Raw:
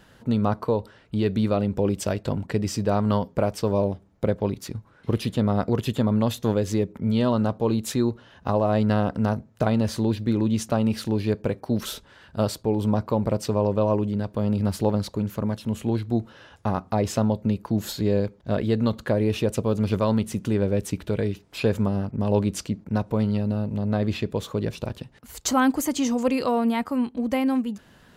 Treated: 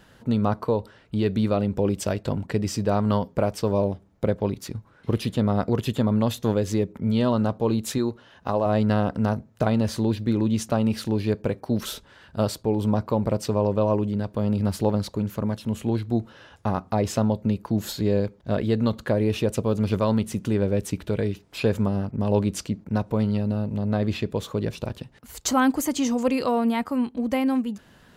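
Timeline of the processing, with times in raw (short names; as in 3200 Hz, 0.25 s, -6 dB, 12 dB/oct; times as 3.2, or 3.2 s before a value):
7.98–8.66 low shelf 200 Hz -7 dB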